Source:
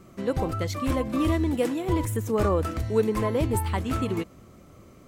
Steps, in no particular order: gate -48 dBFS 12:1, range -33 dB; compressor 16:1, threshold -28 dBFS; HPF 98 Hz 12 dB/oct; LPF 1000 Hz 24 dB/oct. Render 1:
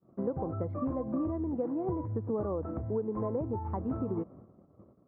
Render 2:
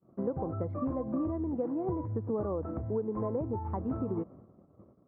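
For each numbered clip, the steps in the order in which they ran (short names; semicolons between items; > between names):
LPF > gate > compressor > HPF; LPF > compressor > gate > HPF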